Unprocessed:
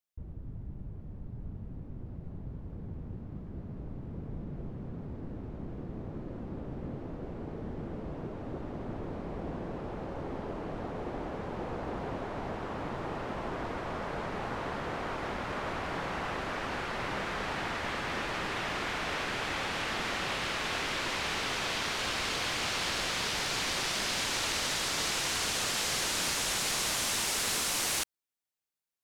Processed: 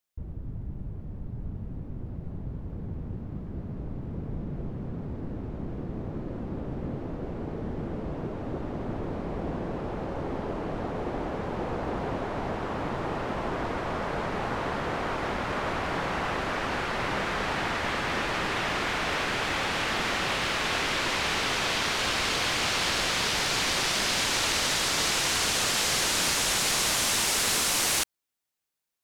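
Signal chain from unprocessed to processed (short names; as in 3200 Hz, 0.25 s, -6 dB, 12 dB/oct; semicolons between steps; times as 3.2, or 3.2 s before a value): 18.81–20.61 hard clip -26.5 dBFS, distortion -35 dB; gain +5.5 dB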